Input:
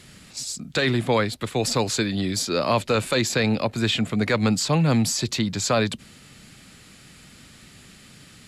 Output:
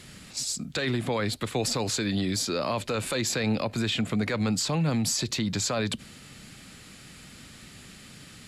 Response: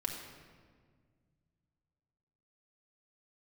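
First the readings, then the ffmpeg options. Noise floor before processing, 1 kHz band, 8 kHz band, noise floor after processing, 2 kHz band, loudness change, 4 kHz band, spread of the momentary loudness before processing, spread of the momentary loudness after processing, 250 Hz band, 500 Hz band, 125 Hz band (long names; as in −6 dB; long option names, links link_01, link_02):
−49 dBFS, −7.0 dB, −2.0 dB, −49 dBFS, −6.0 dB, −5.0 dB, −3.5 dB, 7 LU, 20 LU, −4.5 dB, −6.5 dB, −5.0 dB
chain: -filter_complex "[0:a]alimiter=limit=-19.5dB:level=0:latency=1:release=89,asplit=2[link_01][link_02];[1:a]atrim=start_sample=2205,atrim=end_sample=3969[link_03];[link_02][link_03]afir=irnorm=-1:irlink=0,volume=-22.5dB[link_04];[link_01][link_04]amix=inputs=2:normalize=0"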